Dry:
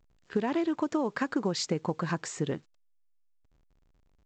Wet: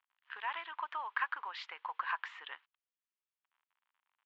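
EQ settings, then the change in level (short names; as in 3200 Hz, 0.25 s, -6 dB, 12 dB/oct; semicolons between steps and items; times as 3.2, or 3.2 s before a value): elliptic band-pass 960–3200 Hz, stop band 80 dB; +1.0 dB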